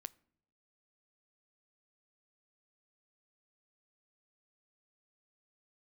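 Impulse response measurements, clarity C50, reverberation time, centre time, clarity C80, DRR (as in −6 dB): 24.0 dB, non-exponential decay, 2 ms, 27.5 dB, 17.5 dB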